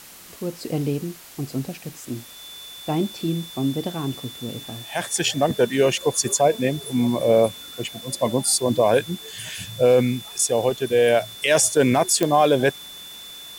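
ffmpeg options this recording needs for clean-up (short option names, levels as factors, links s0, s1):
-af "adeclick=t=4,bandreject=f=3500:w=30,afwtdn=0.0071"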